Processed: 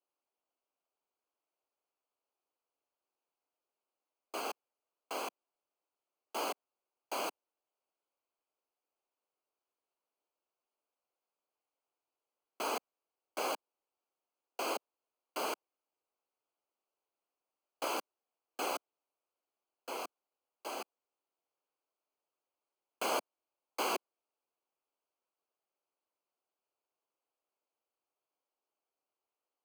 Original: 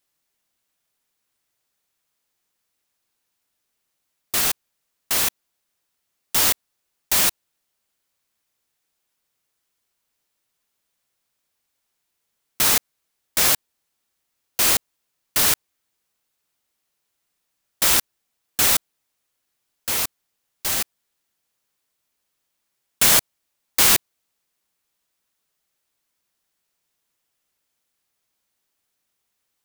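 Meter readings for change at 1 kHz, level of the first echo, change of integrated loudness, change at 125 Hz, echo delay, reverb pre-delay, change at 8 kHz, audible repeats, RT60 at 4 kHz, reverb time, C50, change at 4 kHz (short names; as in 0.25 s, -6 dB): -7.5 dB, none, -21.0 dB, under -30 dB, none, none, -26.5 dB, none, none, none, none, -21.0 dB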